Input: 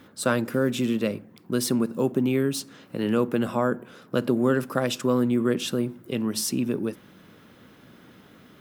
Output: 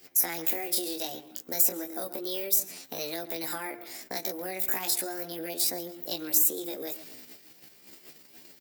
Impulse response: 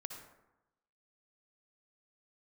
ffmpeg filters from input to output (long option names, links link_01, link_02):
-filter_complex "[0:a]acompressor=threshold=-25dB:ratio=6,asplit=2[link_01][link_02];[link_02]adelay=126,lowpass=frequency=2800:poles=1,volume=-16.5dB,asplit=2[link_03][link_04];[link_04]adelay=126,lowpass=frequency=2800:poles=1,volume=0.3,asplit=2[link_05][link_06];[link_06]adelay=126,lowpass=frequency=2800:poles=1,volume=0.3[link_07];[link_01][link_03][link_05][link_07]amix=inputs=4:normalize=0,flanger=delay=16:depth=6.8:speed=0.34,asetrate=62367,aresample=44100,atempo=0.707107,agate=range=-10dB:threshold=-53dB:ratio=16:detection=peak,highshelf=frequency=3300:gain=7.5,acrossover=split=310|2800[link_08][link_09][link_10];[link_08]acompressor=threshold=-49dB:ratio=4[link_11];[link_09]acompressor=threshold=-35dB:ratio=4[link_12];[link_10]acompressor=threshold=-38dB:ratio=4[link_13];[link_11][link_12][link_13]amix=inputs=3:normalize=0,aemphasis=mode=production:type=75fm"